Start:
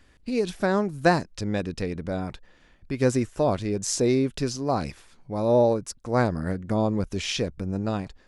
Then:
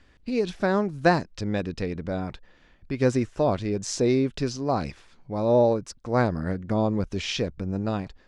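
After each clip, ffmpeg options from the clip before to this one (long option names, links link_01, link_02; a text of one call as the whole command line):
ffmpeg -i in.wav -af "lowpass=5800" out.wav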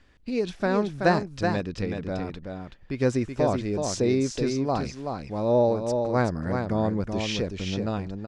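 ffmpeg -i in.wav -af "aecho=1:1:378:0.531,volume=-1.5dB" out.wav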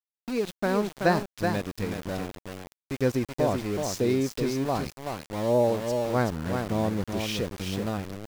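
ffmpeg -i in.wav -af "aeval=exprs='val(0)*gte(abs(val(0)),0.0251)':channel_layout=same,volume=-1.5dB" out.wav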